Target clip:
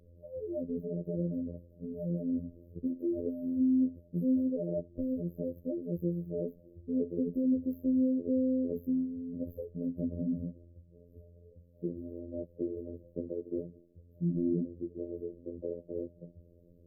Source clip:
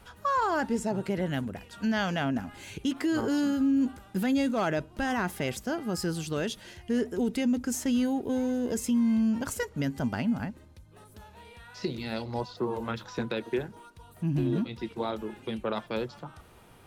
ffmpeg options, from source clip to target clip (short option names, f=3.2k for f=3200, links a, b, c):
-af "adynamicsmooth=sensitivity=4:basefreq=7.1k,afftfilt=real='re*(1-between(b*sr/4096,630,12000))':imag='im*(1-between(b*sr/4096,630,12000))':win_size=4096:overlap=0.75,afftfilt=real='hypot(re,im)*cos(PI*b)':imag='0':win_size=2048:overlap=0.75"